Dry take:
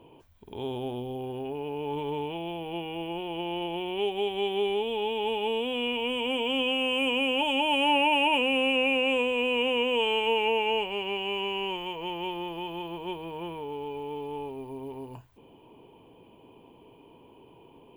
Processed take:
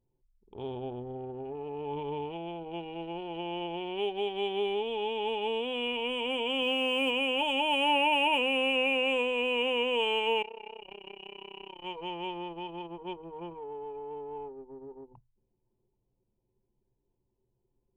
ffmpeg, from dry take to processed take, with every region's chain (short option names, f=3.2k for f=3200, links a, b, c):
-filter_complex "[0:a]asettb=1/sr,asplit=3[a][b][c];[a]atrim=end=6.624[d];[b]atrim=start=6.62:end=7.11,asetpts=PTS-STARTPTS,afade=t=in:d=0.004:c=qsin,afade=t=out:st=0.486:d=0.004:c=qsin,highpass=75,lowshelf=f=460:g=4,acrusher=bits=7:mix=0:aa=0.5[e];[c]atrim=start=7.106[f];[d][e]acrossfade=d=0.004:c1=hsin:c2=qsin[g];[g][f]acrossfade=d=0.004:c1=qsin:c2=hsin,asettb=1/sr,asplit=3[h][i][j];[h]atrim=end=10.424[k];[i]atrim=start=10.42:end=11.84,asetpts=PTS-STARTPTS,afade=t=in:d=0.004:c=qsin,afade=t=out:st=1.416:d=0.004:c=qsin,acompressor=threshold=-30dB:ratio=12:attack=3.2:release=140:knee=1:detection=peak,tremolo=f=32:d=0.667,equalizer=f=230:t=o:w=2.1:g=-2.5[l];[j]atrim=start=11.836[m];[k][l]acrossfade=d=0.004:c1=hsin:c2=qsin[n];[n][m]acrossfade=d=0.004:c1=qsin:c2=hsin,equalizer=f=260:w=1.6:g=-3.5,anlmdn=3.98,volume=-2dB"